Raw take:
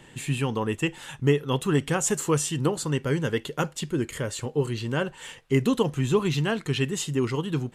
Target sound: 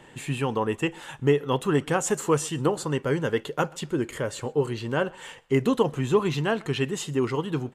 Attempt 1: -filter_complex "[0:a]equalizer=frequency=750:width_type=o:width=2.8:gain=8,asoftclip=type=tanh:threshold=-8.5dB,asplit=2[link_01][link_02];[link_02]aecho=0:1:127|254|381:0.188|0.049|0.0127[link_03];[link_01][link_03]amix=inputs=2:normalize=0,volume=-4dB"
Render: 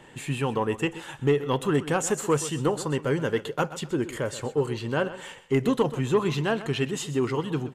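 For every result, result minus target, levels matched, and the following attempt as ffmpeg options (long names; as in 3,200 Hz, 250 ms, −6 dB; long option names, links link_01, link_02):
soft clipping: distortion +15 dB; echo-to-direct +11.5 dB
-filter_complex "[0:a]equalizer=frequency=750:width_type=o:width=2.8:gain=8,asoftclip=type=tanh:threshold=0dB,asplit=2[link_01][link_02];[link_02]aecho=0:1:127|254|381:0.188|0.049|0.0127[link_03];[link_01][link_03]amix=inputs=2:normalize=0,volume=-4dB"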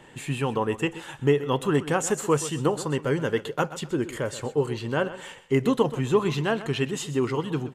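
echo-to-direct +11.5 dB
-filter_complex "[0:a]equalizer=frequency=750:width_type=o:width=2.8:gain=8,asoftclip=type=tanh:threshold=0dB,asplit=2[link_01][link_02];[link_02]aecho=0:1:127|254:0.0501|0.013[link_03];[link_01][link_03]amix=inputs=2:normalize=0,volume=-4dB"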